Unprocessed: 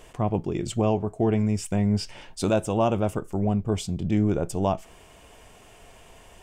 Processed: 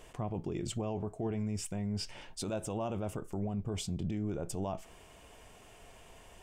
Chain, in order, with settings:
brickwall limiter −22.5 dBFS, peak gain reduction 10.5 dB
level −5 dB

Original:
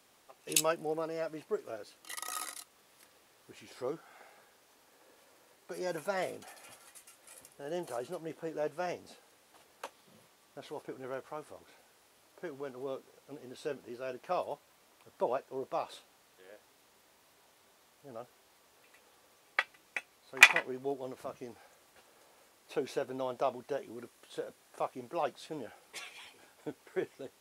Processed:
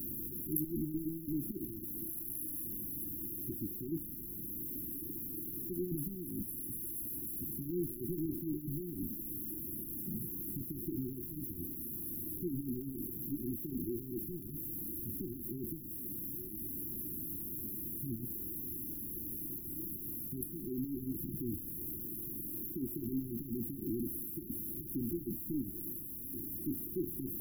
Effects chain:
converter with a step at zero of −29 dBFS
linear-phase brick-wall band-stop 370–11,000 Hz

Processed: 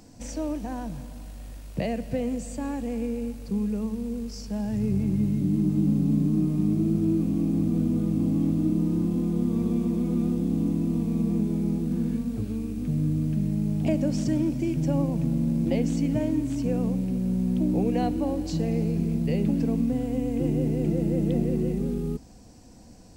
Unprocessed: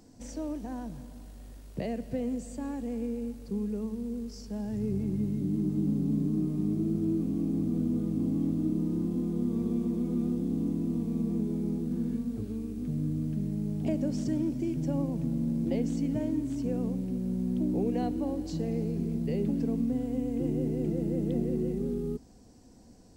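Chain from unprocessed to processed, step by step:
thirty-one-band graphic EQ 250 Hz −4 dB, 400 Hz −7 dB, 2,500 Hz +4 dB
level +7 dB

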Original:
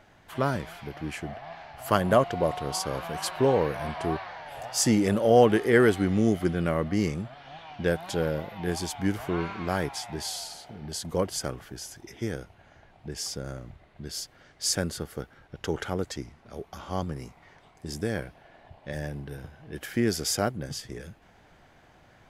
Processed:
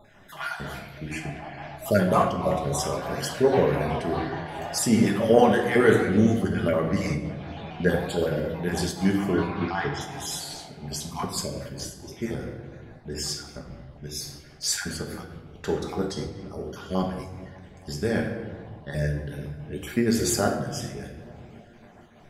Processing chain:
time-frequency cells dropped at random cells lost 37%
0:09.50–0:10.01: low-pass filter 5,100 Hz 24 dB per octave
bucket-brigade delay 288 ms, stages 2,048, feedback 73%, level −21.5 dB
rectangular room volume 810 cubic metres, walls mixed, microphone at 1.3 metres
flanger 0.6 Hz, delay 8.4 ms, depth 7.8 ms, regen −48%
amplitude modulation by smooth noise, depth 55%
level +8.5 dB

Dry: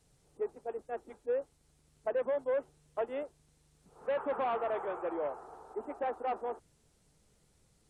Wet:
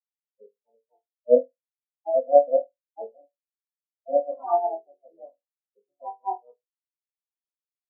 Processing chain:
adaptive Wiener filter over 41 samples
drawn EQ curve 220 Hz 0 dB, 1,700 Hz +8 dB, 3,500 Hz −20 dB
on a send: flutter between parallel walls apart 4.2 metres, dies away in 0.58 s
on the sum: pitch-shifted copies added −12 semitones −6 dB, +4 semitones −2 dB
every bin expanded away from the loudest bin 4 to 1
level +7 dB

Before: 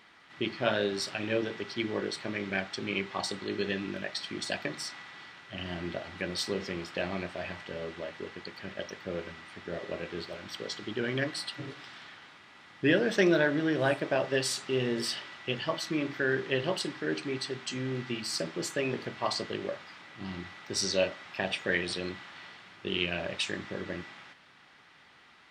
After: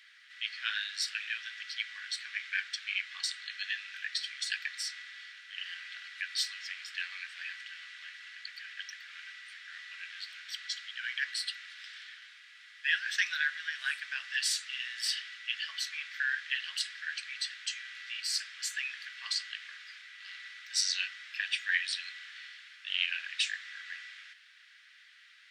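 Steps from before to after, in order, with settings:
elliptic high-pass filter 1,600 Hz, stop band 80 dB
level +2 dB

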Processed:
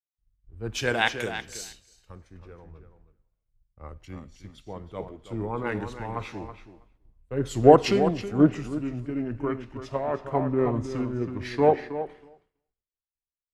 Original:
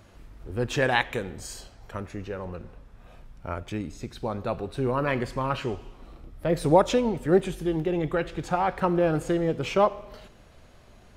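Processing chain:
gliding playback speed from 95% → 70%
on a send: tape delay 323 ms, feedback 25%, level −5.5 dB, low-pass 5,000 Hz
on the sum: downward expander −40 dBFS
multiband upward and downward expander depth 100%
level −4.5 dB

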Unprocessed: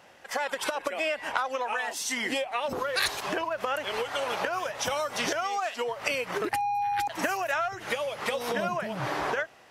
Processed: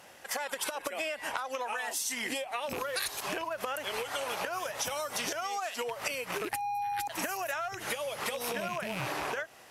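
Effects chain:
loose part that buzzes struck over −42 dBFS, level −25 dBFS
parametric band 12,000 Hz +12 dB 1.4 octaves
downward compressor 4 to 1, threshold −32 dBFS, peak gain reduction 11.5 dB

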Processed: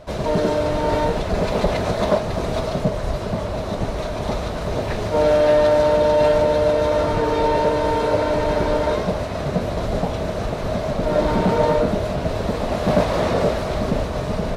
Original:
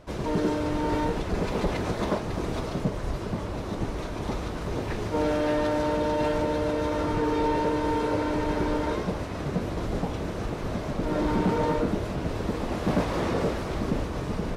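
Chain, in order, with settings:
thirty-one-band graphic EQ 315 Hz −7 dB, 630 Hz +9 dB, 4,000 Hz +4 dB
level +6 dB

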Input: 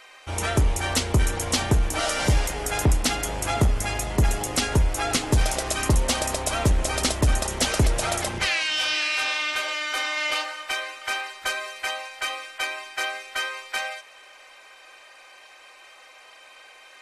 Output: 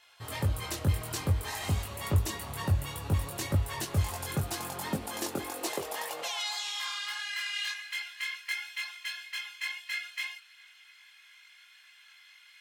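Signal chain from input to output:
multi-voice chorus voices 4, 1.3 Hz, delay 28 ms, depth 3 ms
wrong playback speed 33 rpm record played at 45 rpm
high-pass filter sweep 85 Hz → 1,900 Hz, 0:03.96–0:07.58
level −8.5 dB

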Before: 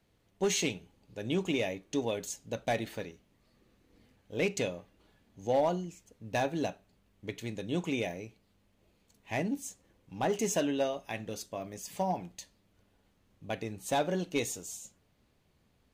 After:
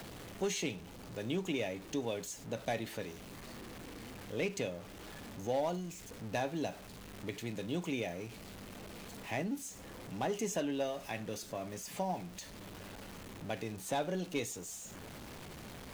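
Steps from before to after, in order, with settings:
converter with a step at zero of −42.5 dBFS
multiband upward and downward compressor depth 40%
level −5 dB

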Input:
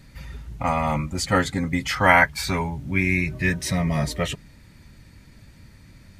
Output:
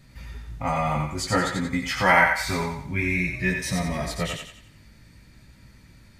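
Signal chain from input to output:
chorus effect 0.54 Hz, delay 15.5 ms, depth 3.9 ms
on a send: feedback echo with a high-pass in the loop 89 ms, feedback 43%, high-pass 540 Hz, level −4 dB

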